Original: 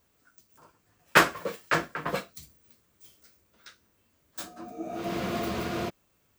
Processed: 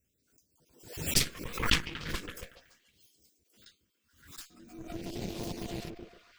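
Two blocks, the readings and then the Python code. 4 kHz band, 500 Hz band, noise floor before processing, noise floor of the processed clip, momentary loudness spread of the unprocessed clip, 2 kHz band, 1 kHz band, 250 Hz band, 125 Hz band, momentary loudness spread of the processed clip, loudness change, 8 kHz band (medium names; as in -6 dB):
+2.0 dB, -10.5 dB, -70 dBFS, -77 dBFS, 19 LU, -9.5 dB, -13.5 dB, -5.5 dB, -0.5 dB, 21 LU, -4.5 dB, +3.5 dB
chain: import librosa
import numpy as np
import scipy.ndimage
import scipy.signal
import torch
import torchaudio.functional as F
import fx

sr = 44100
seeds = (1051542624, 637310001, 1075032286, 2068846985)

y = fx.spec_dropout(x, sr, seeds[0], share_pct=33)
y = fx.echo_stepped(y, sr, ms=141, hz=340.0, octaves=0.7, feedback_pct=70, wet_db=-1.5)
y = fx.cheby_harmonics(y, sr, harmonics=(3, 4), levels_db=(-6, -6), full_scale_db=-9.5)
y = fx.phaser_stages(y, sr, stages=2, low_hz=630.0, high_hz=1300.0, hz=0.41, feedback_pct=30)
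y = fx.pre_swell(y, sr, db_per_s=97.0)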